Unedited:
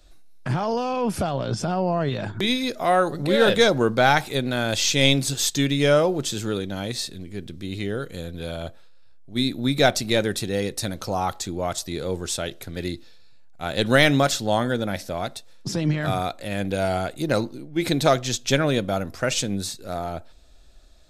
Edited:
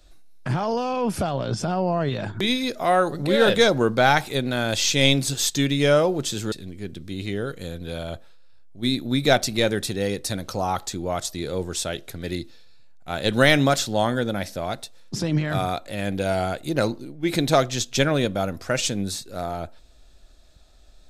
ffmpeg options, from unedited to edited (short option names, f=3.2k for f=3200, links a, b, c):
-filter_complex "[0:a]asplit=2[a][b];[a]atrim=end=6.522[c];[b]atrim=start=7.048[d];[c][d]acrossfade=d=0.004:c1=hsin:c2=hsin"